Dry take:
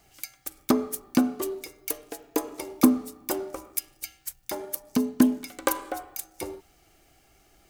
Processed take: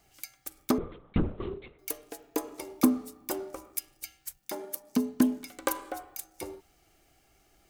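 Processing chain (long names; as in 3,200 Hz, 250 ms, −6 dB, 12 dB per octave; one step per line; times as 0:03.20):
0:00.78–0:01.79: linear-prediction vocoder at 8 kHz whisper
0:04.37–0:05.00: low shelf with overshoot 130 Hz −11.5 dB, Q 1.5
level −4.5 dB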